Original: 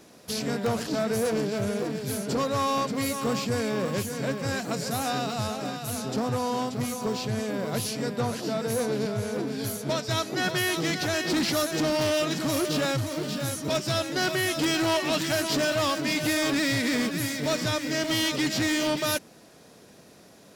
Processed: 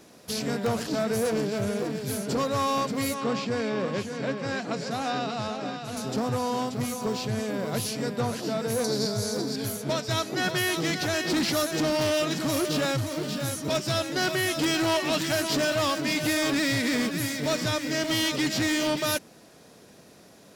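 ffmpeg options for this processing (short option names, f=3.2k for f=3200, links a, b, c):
-filter_complex "[0:a]asettb=1/sr,asplit=3[a][b][c];[a]atrim=end=3.144[d];[b]atrim=start=3.14:end=5.97,asetpts=PTS-STARTPTS,afade=t=in:d=0.004:c=qsin,afade=t=out:st=2.826:d=0.004:c=qsin,highpass=150,lowpass=4.8k[e];[c]atrim=start=5.966[f];[d][e]acrossfade=d=0.004:c1=hsin:c2=qsin[g];[g][f]acrossfade=d=0.004:c1=qsin:c2=hsin,asettb=1/sr,asplit=3[h][i][j];[h]atrim=end=8.844[k];[i]atrim=start=8.84:end=9.56,asetpts=PTS-STARTPTS,afade=t=in:d=0.004:c=qsin,afade=t=out:st=0.716:d=0.004:c=qsin,highshelf=f=3.6k:t=q:w=3:g=7.5[l];[j]atrim=start=9.556[m];[k][l]acrossfade=d=0.004:c1=hsin:c2=qsin[n];[n][m]acrossfade=d=0.004:c1=qsin:c2=hsin"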